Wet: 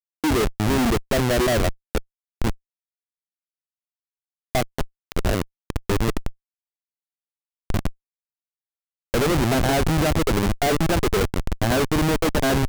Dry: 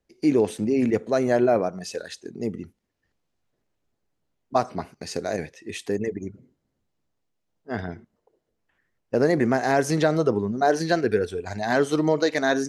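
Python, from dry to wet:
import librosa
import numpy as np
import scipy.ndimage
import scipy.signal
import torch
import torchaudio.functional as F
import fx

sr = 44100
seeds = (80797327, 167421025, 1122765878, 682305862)

y = fx.notch(x, sr, hz=6600.0, q=30.0)
y = fx.schmitt(y, sr, flips_db=-23.0)
y = y * 10.0 ** (6.5 / 20.0)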